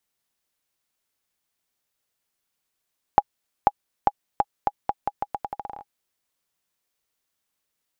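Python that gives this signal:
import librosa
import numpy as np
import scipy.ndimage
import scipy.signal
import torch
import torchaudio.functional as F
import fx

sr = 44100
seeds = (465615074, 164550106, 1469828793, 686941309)

y = fx.bouncing_ball(sr, first_gap_s=0.49, ratio=0.82, hz=819.0, decay_ms=43.0, level_db=-2.0)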